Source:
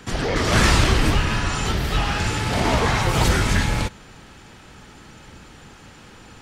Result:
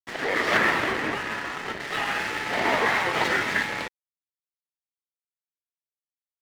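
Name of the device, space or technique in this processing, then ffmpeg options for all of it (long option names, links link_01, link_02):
pocket radio on a weak battery: -filter_complex "[0:a]asettb=1/sr,asplit=3[link_01][link_02][link_03];[link_01]atrim=end=0.574[link_04];[link_02]atrim=start=0.57:end=1.8,asetpts=PTS-STARTPTS,afade=type=in:duration=0.004:curve=qsin,afade=type=out:start_time=1.226:duration=0.004:curve=qsin,lowpass=frequency=1900:poles=1[link_05];[link_03]atrim=start=1.796[link_06];[link_04][link_05]acrossfade=duration=0.004:curve1=hsin:curve2=qsin[link_07];[link_07][link_06]acrossfade=duration=0.004:curve1=qsin:curve2=hsin,highpass=340,lowpass=3500,aeval=exprs='sgn(val(0))*max(abs(val(0))-0.02,0)':channel_layout=same,equalizer=frequency=1900:width_type=o:width=0.36:gain=8.5"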